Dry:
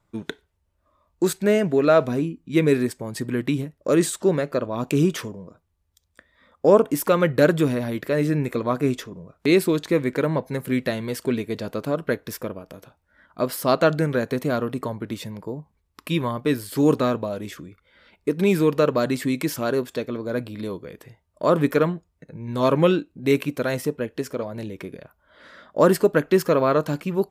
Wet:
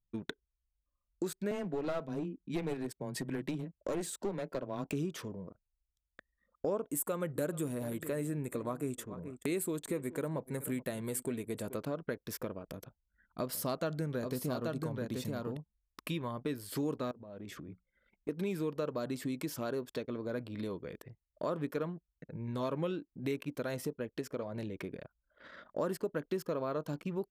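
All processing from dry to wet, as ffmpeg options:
-filter_complex "[0:a]asettb=1/sr,asplit=3[a][b][c];[a]atrim=end=1.514[d];[b]atrim=start=1.51:end=4.93,asetpts=PTS-STARTPTS,afade=t=in:d=0.004:c=qsin,afade=t=out:st=3.416:d=0.004:c=qsin,afreqshift=13,asuperstop=centerf=1200:order=8:qfactor=7.9,aeval=exprs='clip(val(0),-1,0.0891)':c=same[e];[c]atrim=start=4.926[f];[d][e]acrossfade=d=0.004:c1=hsin:c2=qsin[g];[g][f]acrossfade=d=0.004:c1=qsin:c2=hsin,asettb=1/sr,asplit=3[h][i][j];[h]atrim=end=6.894[k];[i]atrim=start=6.89:end=11.77,asetpts=PTS-STARTPTS,afade=t=in:d=0.004:c=qsin,afade=t=out:st=4.876:d=0.004:c=qsin,highshelf=f=6.6k:t=q:w=3:g=8,aecho=1:1:428:0.106,atrim=end_sample=215208[l];[j]atrim=start=11.766[m];[k][l]acrossfade=d=0.004:c1=hsin:c2=qsin[n];[n][m]acrossfade=d=0.004:c1=qsin:c2=hsin,asettb=1/sr,asplit=3[o][p][q];[o]atrim=end=12.684[r];[p]atrim=start=12.68:end=15.57,asetpts=PTS-STARTPTS,afade=t=in:d=0.004:c=qsin,afade=t=out:st=2.886:d=0.004:c=qsin,bass=f=250:g=4,treble=f=4k:g=5,aecho=1:1:831:0.531,atrim=end_sample=127449,asoftclip=type=hard:threshold=-6.5dB[s];[q]atrim=start=15.566[t];[r][s]acrossfade=d=0.004:c1=hsin:c2=qsin[u];[u][t]acrossfade=d=0.004:c1=qsin:c2=hsin,asettb=1/sr,asplit=3[v][w][x];[v]atrim=end=17.114[y];[w]atrim=start=17.11:end=18.29,asetpts=PTS-STARTPTS,afade=t=in:d=0.004:c=qsin,afade=t=out:st=1.176:d=0.004:c=qsin,bandreject=f=60:t=h:w=6,bandreject=f=120:t=h:w=6,bandreject=f=180:t=h:w=6,bandreject=f=240:t=h:w=6,acompressor=threshold=-38dB:ratio=12:attack=3.2:release=140:knee=1:detection=peak,equalizer=f=200:t=o:w=2.3:g=2.5[z];[x]atrim=start=18.286[aa];[y][z]acrossfade=d=0.004:c1=hsin:c2=qsin[ab];[ab][aa]acrossfade=d=0.004:c1=qsin:c2=hsin,adynamicequalizer=threshold=0.00891:dfrequency=2000:dqfactor=1.5:tfrequency=2000:tqfactor=1.5:attack=5:release=100:ratio=0.375:range=3:mode=cutabove:tftype=bell,acompressor=threshold=-31dB:ratio=3,anlmdn=0.0158,volume=-5dB"

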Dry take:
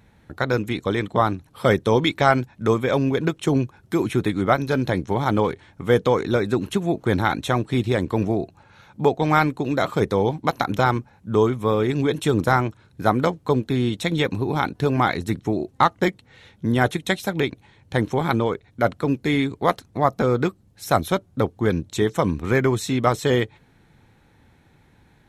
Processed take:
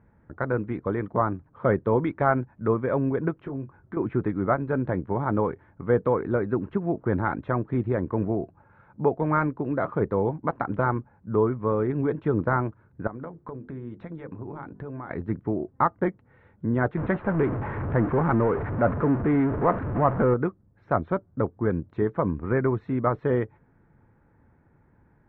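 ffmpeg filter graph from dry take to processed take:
-filter_complex "[0:a]asettb=1/sr,asplit=3[a][b][c];[a]atrim=end=3.424[d];[b]atrim=start=3.42:end=3.97,asetpts=PTS-STARTPTS,afade=t=in:d=0.004:c=qsin,afade=t=out:st=0.546:d=0.004:c=qsin,acompressor=threshold=-27dB:ratio=5:attack=3.2:release=140:knee=1:detection=peak,asplit=2[e][f];[f]adelay=22,volume=-8dB[g];[e][g]amix=inputs=2:normalize=0,atrim=end_sample=24255[h];[c]atrim=start=3.966[i];[d][h]acrossfade=d=0.004:c1=hsin:c2=qsin[j];[j][i]acrossfade=d=0.004:c1=qsin:c2=hsin,asettb=1/sr,asplit=3[k][l][m];[k]atrim=end=13.074[n];[l]atrim=start=13.07:end=15.11,asetpts=PTS-STARTPTS,afade=t=in:d=0.004:c=qsin,afade=t=out:st=2.036:d=0.004:c=qsin,acompressor=threshold=-27dB:ratio=16:attack=3.2:release=140:knee=1:detection=peak,bandreject=f=50:t=h:w=6,bandreject=f=100:t=h:w=6,bandreject=f=150:t=h:w=6,bandreject=f=200:t=h:w=6,bandreject=f=250:t=h:w=6,bandreject=f=300:t=h:w=6,bandreject=f=350:t=h:w=6,bandreject=f=400:t=h:w=6,bandreject=f=450:t=h:w=6[o];[m]atrim=start=15.106[p];[n][o]acrossfade=d=0.004:c1=hsin:c2=qsin[q];[q][p]acrossfade=d=0.004:c1=qsin:c2=hsin,asettb=1/sr,asplit=3[r][s][t];[r]atrim=end=16.974[u];[s]atrim=start=16.97:end=20.34,asetpts=PTS-STARTPTS,afade=t=in:d=0.004:c=qsin,afade=t=out:st=3.366:d=0.004:c=qsin,aeval=exprs='val(0)+0.5*0.119*sgn(val(0))':c=same,lowpass=2.9k,adynamicsmooth=sensitivity=4:basefreq=1.1k[v];[t]atrim=start=20.336[w];[u][v]acrossfade=d=0.004:c1=hsin:c2=qsin[x];[x][w]acrossfade=d=0.004:c1=qsin:c2=hsin,lowpass=f=1.6k:w=0.5412,lowpass=f=1.6k:w=1.3066,bandreject=f=770:w=12,volume=-4dB"

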